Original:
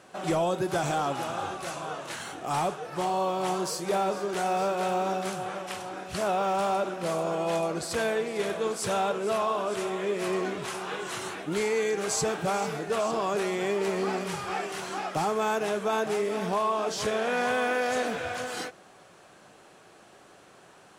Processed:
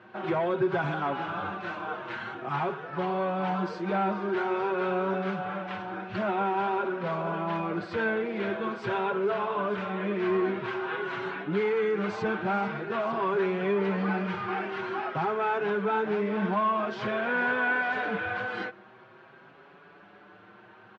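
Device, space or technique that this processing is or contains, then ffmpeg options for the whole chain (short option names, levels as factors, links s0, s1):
barber-pole flanger into a guitar amplifier: -filter_complex "[0:a]asplit=2[s0][s1];[s1]adelay=6,afreqshift=0.48[s2];[s0][s2]amix=inputs=2:normalize=1,asoftclip=type=tanh:threshold=0.0631,highpass=83,equalizer=f=110:t=q:w=4:g=9,equalizer=f=200:t=q:w=4:g=9,equalizer=f=370:t=q:w=4:g=7,equalizer=f=980:t=q:w=4:g=6,equalizer=f=1500:t=q:w=4:g=9,equalizer=f=2200:t=q:w=4:g=3,lowpass=f=3500:w=0.5412,lowpass=f=3500:w=1.3066"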